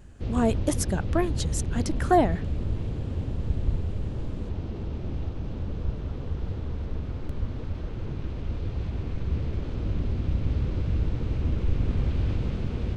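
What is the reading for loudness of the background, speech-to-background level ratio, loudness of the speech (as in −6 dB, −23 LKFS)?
−31.0 LKFS, 3.5 dB, −27.5 LKFS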